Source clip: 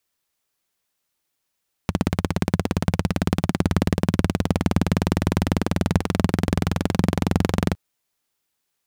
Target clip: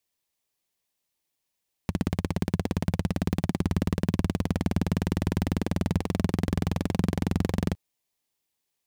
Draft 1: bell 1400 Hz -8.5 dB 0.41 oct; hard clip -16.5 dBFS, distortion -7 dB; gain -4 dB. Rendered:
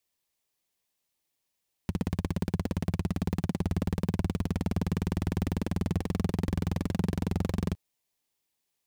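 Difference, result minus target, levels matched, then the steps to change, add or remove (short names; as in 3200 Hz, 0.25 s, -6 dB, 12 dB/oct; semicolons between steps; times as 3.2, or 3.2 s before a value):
hard clip: distortion +8 dB
change: hard clip -10.5 dBFS, distortion -15 dB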